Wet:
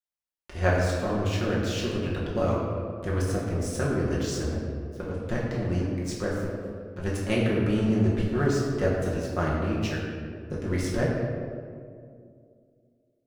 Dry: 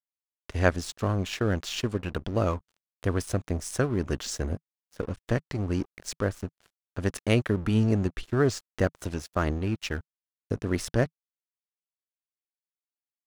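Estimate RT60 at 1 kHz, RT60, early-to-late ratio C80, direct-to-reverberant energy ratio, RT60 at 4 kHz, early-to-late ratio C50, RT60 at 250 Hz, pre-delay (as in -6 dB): 1.9 s, 2.3 s, 2.0 dB, -6.0 dB, 1.1 s, 0.5 dB, 2.8 s, 5 ms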